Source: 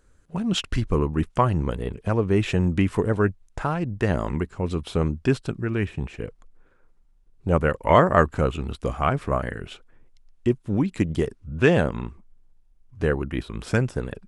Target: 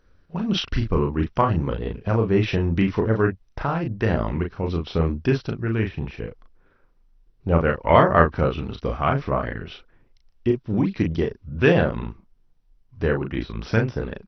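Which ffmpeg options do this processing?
-filter_complex "[0:a]asplit=2[s0][s1];[s1]adelay=36,volume=0.596[s2];[s0][s2]amix=inputs=2:normalize=0" -ar 32000 -c:a mp2 -b:a 48k

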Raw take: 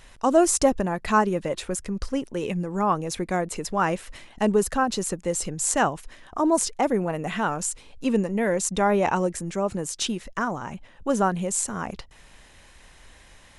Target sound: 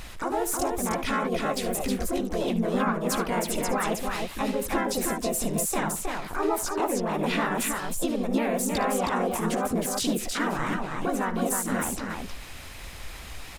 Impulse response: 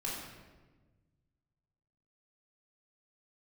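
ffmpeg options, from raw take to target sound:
-filter_complex "[0:a]acompressor=threshold=0.0282:ratio=10,alimiter=level_in=1.33:limit=0.0631:level=0:latency=1:release=73,volume=0.75,asplit=4[s0][s1][s2][s3];[s1]asetrate=55563,aresample=44100,atempo=0.793701,volume=1[s4];[s2]asetrate=58866,aresample=44100,atempo=0.749154,volume=0.794[s5];[s3]asetrate=88200,aresample=44100,atempo=0.5,volume=0.251[s6];[s0][s4][s5][s6]amix=inputs=4:normalize=0,aecho=1:1:58|72|316:0.141|0.178|0.631,volume=1.58"

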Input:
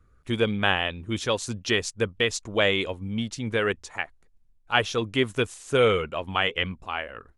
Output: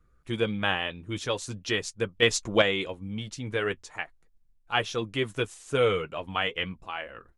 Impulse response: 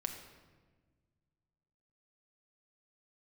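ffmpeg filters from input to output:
-filter_complex "[0:a]flanger=delay=5.7:depth=1.1:regen=-46:speed=0.41:shape=triangular,asettb=1/sr,asplit=3[s0][s1][s2];[s0]atrim=end=2.224[s3];[s1]atrim=start=2.22:end=2.62,asetpts=PTS-STARTPTS,afade=t=in:d=0.004:c=qsin,afade=t=out:st=0.396:d=0.004:c=qsin,acontrast=76[s4];[s2]atrim=start=2.616[s5];[s3][s4]acrossfade=d=0.004:c1=hsin:c2=qsin[s6];[s6][s5]acrossfade=d=0.004:c1=qsin:c2=hsin"

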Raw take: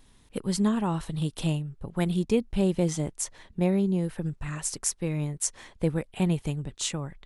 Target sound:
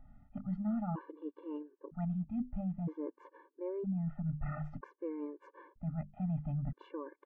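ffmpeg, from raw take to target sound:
-af "lowpass=f=1400:w=0.5412,lowpass=f=1400:w=1.3066,bandreject=f=50:t=h:w=6,bandreject=f=100:t=h:w=6,bandreject=f=150:t=h:w=6,bandreject=f=200:t=h:w=6,bandreject=f=250:t=h:w=6,areverse,acompressor=threshold=0.0178:ratio=5,areverse,afftfilt=real='re*gt(sin(2*PI*0.52*pts/sr)*(1-2*mod(floor(b*sr/1024/300),2)),0)':imag='im*gt(sin(2*PI*0.52*pts/sr)*(1-2*mod(floor(b*sr/1024/300),2)),0)':win_size=1024:overlap=0.75,volume=1.33"

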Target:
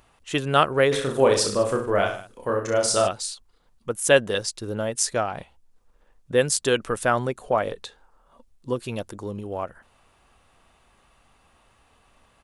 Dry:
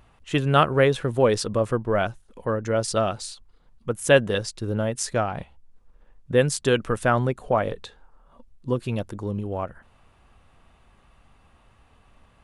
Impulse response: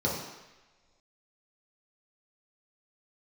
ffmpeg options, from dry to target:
-filter_complex "[0:a]bass=f=250:g=-7,treble=f=4000:g=6,asplit=3[s0][s1][s2];[s0]afade=t=out:st=0.91:d=0.02[s3];[s1]aecho=1:1:30|64.5|104.2|149.8|202.3:0.631|0.398|0.251|0.158|0.1,afade=t=in:st=0.91:d=0.02,afade=t=out:st=3.07:d=0.02[s4];[s2]afade=t=in:st=3.07:d=0.02[s5];[s3][s4][s5]amix=inputs=3:normalize=0"

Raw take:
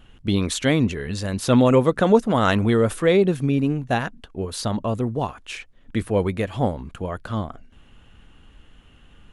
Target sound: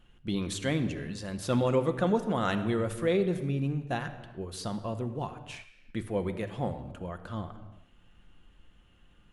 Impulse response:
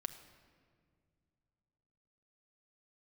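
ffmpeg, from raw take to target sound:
-filter_complex "[1:a]atrim=start_sample=2205,afade=t=out:st=0.43:d=0.01,atrim=end_sample=19404[s0];[0:a][s0]afir=irnorm=-1:irlink=0,volume=0.398"

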